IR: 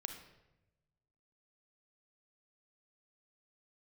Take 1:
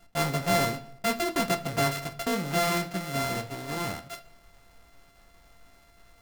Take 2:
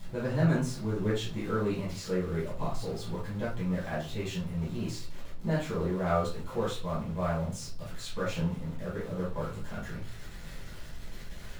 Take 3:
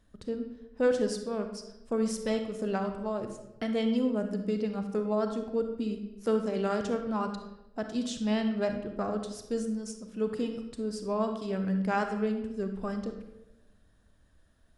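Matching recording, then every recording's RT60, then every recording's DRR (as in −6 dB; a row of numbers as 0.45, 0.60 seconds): 3; 0.65, 0.40, 1.0 seconds; 8.5, −8.5, 6.0 decibels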